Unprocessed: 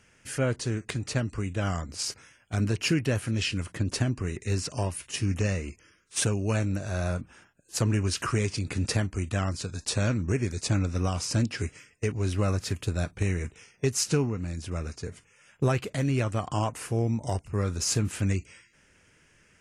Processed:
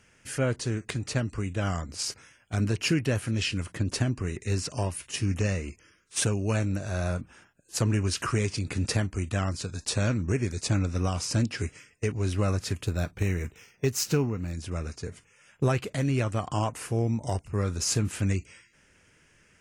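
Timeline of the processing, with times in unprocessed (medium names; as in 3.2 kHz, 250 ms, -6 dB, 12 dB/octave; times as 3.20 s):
12.86–14.53 s: decimation joined by straight lines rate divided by 2×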